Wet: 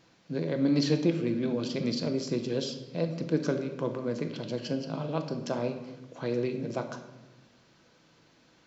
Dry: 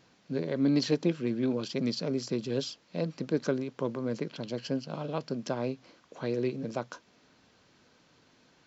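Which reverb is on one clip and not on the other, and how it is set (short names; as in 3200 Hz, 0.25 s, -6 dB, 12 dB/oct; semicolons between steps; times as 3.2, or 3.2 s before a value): shoebox room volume 550 m³, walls mixed, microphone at 0.71 m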